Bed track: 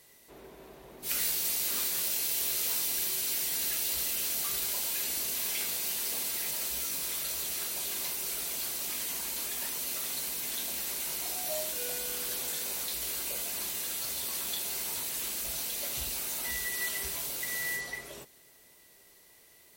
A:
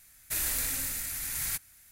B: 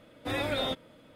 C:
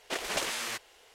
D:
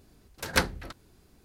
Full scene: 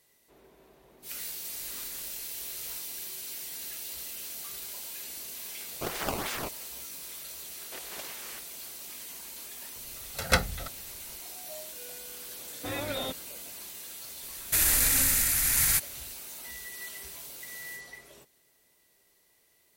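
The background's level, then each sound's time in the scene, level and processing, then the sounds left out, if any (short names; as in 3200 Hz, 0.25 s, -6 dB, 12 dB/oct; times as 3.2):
bed track -8 dB
1.22 add A -17 dB + stuck buffer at 0.5
5.71 add C + decimation with a swept rate 15×, swing 160% 2.9 Hz
7.62 add C -11.5 dB + three-band squash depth 40%
9.76 add D -0.5 dB + comb 1.5 ms, depth 67%
12.38 add B -3.5 dB
14.22 add A -12.5 dB + maximiser +22 dB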